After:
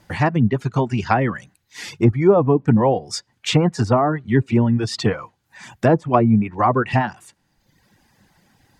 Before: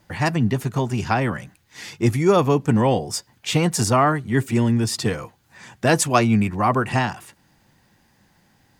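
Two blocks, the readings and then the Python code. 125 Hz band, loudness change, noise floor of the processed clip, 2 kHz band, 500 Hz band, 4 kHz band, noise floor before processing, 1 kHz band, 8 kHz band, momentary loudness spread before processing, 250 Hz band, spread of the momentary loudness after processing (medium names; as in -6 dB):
+2.0 dB, +2.0 dB, -68 dBFS, -1.0 dB, +3.0 dB, -0.5 dB, -61 dBFS, +1.0 dB, -8.5 dB, 10 LU, +2.5 dB, 10 LU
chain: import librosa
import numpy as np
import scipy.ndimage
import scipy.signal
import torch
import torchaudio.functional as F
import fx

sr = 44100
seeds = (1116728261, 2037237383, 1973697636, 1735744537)

y = fx.dereverb_blind(x, sr, rt60_s=0.97)
y = fx.env_lowpass_down(y, sr, base_hz=780.0, full_db=-14.0)
y = y * 10.0 ** (4.0 / 20.0)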